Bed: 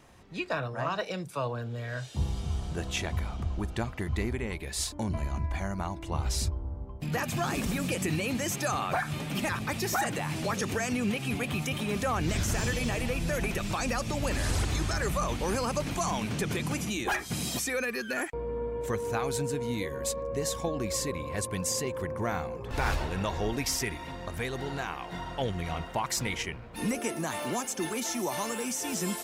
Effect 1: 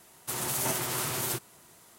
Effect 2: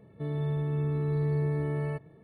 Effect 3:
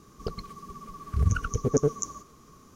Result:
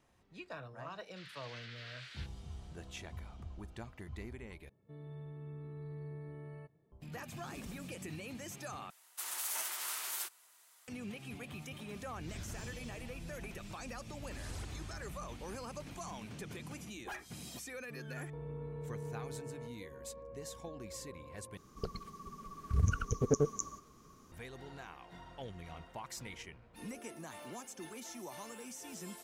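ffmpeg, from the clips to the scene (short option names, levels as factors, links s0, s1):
-filter_complex "[1:a]asplit=2[s0][s1];[2:a]asplit=2[s2][s3];[0:a]volume=0.178[s4];[s0]asuperpass=centerf=2600:order=8:qfactor=0.85[s5];[s1]highpass=1100[s6];[s4]asplit=4[s7][s8][s9][s10];[s7]atrim=end=4.694[s11];[s2]atrim=end=2.23,asetpts=PTS-STARTPTS,volume=0.133[s12];[s8]atrim=start=6.916:end=8.904[s13];[s6]atrim=end=1.98,asetpts=PTS-STARTPTS,volume=0.447[s14];[s9]atrim=start=10.876:end=21.574[s15];[3:a]atrim=end=2.75,asetpts=PTS-STARTPTS,volume=0.501[s16];[s10]atrim=start=24.316[s17];[s5]atrim=end=1.98,asetpts=PTS-STARTPTS,volume=0.282,afade=t=in:d=0.004:c=hsin,afade=t=out:st=1.976:d=0.004:c=hsin,adelay=880[s18];[s3]atrim=end=2.23,asetpts=PTS-STARTPTS,volume=0.15,afade=t=in:d=0.004:c=hsin,afade=t=out:st=2.226:d=0.004:c=hsin,adelay=17700[s19];[s11][s12]acrossfade=d=0.004:c1=hsin:c2=hsin[s20];[s20][s13]acrossfade=d=0.004:c1=hsin:c2=hsin[s21];[s21][s14]acrossfade=d=0.004:c1=hsin:c2=hsin[s22];[s22][s15]acrossfade=d=0.004:c1=hsin:c2=hsin[s23];[s23][s16]acrossfade=d=0.004:c1=hsin:c2=hsin[s24];[s24][s17]acrossfade=d=0.004:c1=hsin:c2=hsin[s25];[s25][s18][s19]amix=inputs=3:normalize=0"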